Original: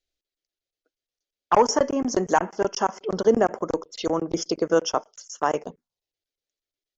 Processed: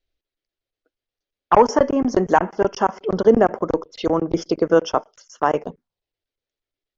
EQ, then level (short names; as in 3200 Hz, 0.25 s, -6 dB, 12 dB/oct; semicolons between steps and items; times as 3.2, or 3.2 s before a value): air absorption 180 m; low shelf 110 Hz +5.5 dB; +5.0 dB